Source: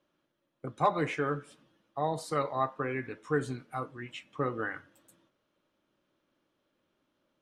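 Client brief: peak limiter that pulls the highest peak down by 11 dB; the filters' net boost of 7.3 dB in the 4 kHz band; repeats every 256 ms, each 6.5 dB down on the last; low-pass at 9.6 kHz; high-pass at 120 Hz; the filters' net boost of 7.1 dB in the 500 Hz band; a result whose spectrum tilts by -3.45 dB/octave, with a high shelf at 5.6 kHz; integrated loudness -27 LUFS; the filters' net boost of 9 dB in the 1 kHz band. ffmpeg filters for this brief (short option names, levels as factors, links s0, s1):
-af "highpass=120,lowpass=9600,equalizer=f=500:t=o:g=6,equalizer=f=1000:t=o:g=9,equalizer=f=4000:t=o:g=7.5,highshelf=f=5600:g=3,alimiter=limit=0.158:level=0:latency=1,aecho=1:1:256|512|768|1024|1280|1536:0.473|0.222|0.105|0.0491|0.0231|0.0109,volume=1.26"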